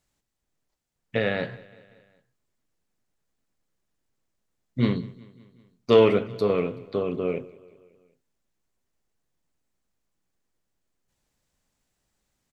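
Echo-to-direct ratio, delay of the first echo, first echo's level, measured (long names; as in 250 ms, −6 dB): −20.0 dB, 189 ms, −22.0 dB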